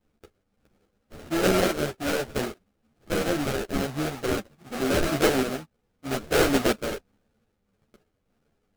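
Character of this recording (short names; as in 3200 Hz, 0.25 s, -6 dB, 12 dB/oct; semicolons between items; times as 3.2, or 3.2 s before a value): a buzz of ramps at a fixed pitch in blocks of 8 samples; random-step tremolo; aliases and images of a low sample rate 1000 Hz, jitter 20%; a shimmering, thickened sound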